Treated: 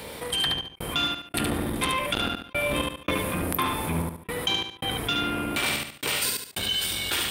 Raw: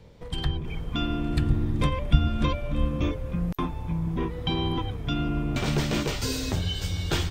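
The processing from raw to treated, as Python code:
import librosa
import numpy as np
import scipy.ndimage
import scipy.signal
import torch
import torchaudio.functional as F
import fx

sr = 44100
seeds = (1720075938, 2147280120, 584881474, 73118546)

p1 = fx.octave_divider(x, sr, octaves=1, level_db=1.0)
p2 = fx.dynamic_eq(p1, sr, hz=2600.0, q=0.77, threshold_db=-42.0, ratio=4.0, max_db=4)
p3 = fx.step_gate(p2, sr, bpm=112, pattern='xxxx..xx..xxx', floor_db=-60.0, edge_ms=4.5)
p4 = fx.high_shelf_res(p3, sr, hz=8000.0, db=8.5, q=3.0)
p5 = 10.0 ** (-18.5 / 20.0) * np.tanh(p4 / 10.0 ** (-18.5 / 20.0))
p6 = fx.highpass(p5, sr, hz=1400.0, slope=6)
p7 = fx.rider(p6, sr, range_db=10, speed_s=0.5)
p8 = p7 + fx.echo_feedback(p7, sr, ms=72, feedback_pct=16, wet_db=-5.5, dry=0)
p9 = fx.env_flatten(p8, sr, amount_pct=50)
y = F.gain(torch.from_numpy(p9), 6.5).numpy()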